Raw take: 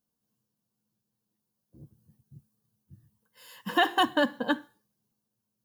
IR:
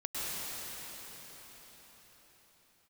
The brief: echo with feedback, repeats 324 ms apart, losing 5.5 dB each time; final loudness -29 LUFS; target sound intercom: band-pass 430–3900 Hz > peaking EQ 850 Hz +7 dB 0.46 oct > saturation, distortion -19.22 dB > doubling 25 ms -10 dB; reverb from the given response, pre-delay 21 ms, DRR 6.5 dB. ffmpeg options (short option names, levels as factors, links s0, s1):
-filter_complex "[0:a]aecho=1:1:324|648|972|1296|1620|1944|2268:0.531|0.281|0.149|0.079|0.0419|0.0222|0.0118,asplit=2[s0][s1];[1:a]atrim=start_sample=2205,adelay=21[s2];[s1][s2]afir=irnorm=-1:irlink=0,volume=0.237[s3];[s0][s3]amix=inputs=2:normalize=0,highpass=430,lowpass=3900,equalizer=f=850:t=o:w=0.46:g=7,asoftclip=threshold=0.211,asplit=2[s4][s5];[s5]adelay=25,volume=0.316[s6];[s4][s6]amix=inputs=2:normalize=0,volume=0.794"